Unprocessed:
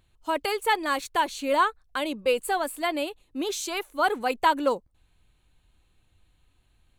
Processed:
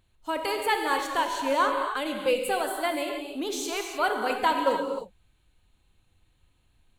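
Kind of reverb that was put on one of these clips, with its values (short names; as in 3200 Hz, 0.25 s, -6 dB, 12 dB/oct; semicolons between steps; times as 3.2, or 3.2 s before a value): non-linear reverb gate 0.33 s flat, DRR 2.5 dB; gain -2.5 dB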